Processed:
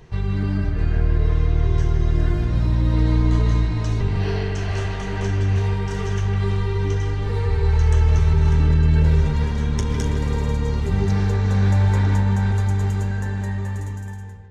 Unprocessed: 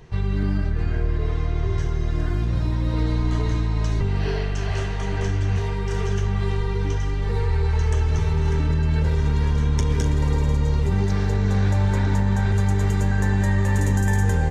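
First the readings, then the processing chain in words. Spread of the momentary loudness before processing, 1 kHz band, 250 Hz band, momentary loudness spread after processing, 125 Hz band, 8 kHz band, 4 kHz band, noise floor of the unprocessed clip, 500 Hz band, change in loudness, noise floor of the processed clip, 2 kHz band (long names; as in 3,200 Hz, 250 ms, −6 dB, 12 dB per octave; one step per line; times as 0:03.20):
5 LU, 0.0 dB, +0.5 dB, 8 LU, +2.0 dB, can't be measured, +0.5 dB, −24 dBFS, +0.5 dB, +2.0 dB, −28 dBFS, −1.0 dB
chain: fade-out on the ending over 2.53 s
bucket-brigade delay 154 ms, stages 4,096, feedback 36%, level −6 dB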